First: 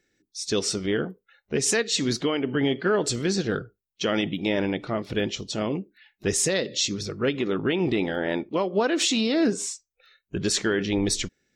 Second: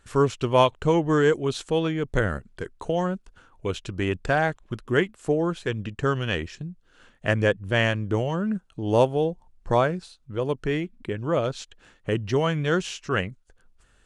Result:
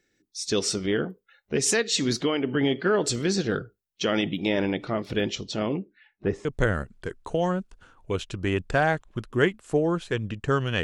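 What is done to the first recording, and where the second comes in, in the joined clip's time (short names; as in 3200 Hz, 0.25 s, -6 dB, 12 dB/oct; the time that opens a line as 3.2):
first
5.35–6.45 LPF 7200 Hz -> 1100 Hz
6.45 switch to second from 2 s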